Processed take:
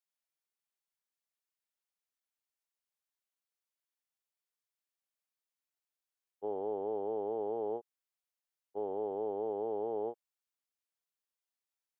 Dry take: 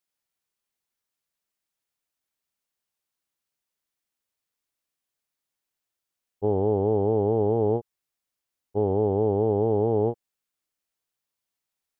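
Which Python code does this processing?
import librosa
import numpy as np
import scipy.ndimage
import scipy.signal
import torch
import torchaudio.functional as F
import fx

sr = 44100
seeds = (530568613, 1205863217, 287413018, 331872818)

y = scipy.signal.sosfilt(scipy.signal.butter(2, 450.0, 'highpass', fs=sr, output='sos'), x)
y = y * 10.0 ** (-9.0 / 20.0)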